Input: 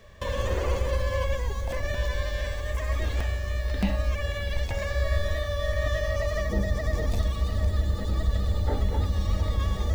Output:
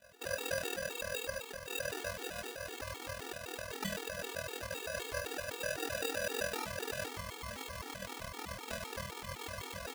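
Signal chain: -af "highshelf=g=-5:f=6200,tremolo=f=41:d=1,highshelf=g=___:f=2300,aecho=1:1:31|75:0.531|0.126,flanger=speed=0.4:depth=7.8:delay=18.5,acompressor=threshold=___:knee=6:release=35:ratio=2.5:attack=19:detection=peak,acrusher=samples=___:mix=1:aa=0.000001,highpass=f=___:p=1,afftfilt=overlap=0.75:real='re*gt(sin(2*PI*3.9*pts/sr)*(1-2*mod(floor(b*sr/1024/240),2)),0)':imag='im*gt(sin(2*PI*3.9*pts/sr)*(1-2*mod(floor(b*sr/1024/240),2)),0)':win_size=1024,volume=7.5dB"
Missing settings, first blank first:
5.5, -32dB, 41, 960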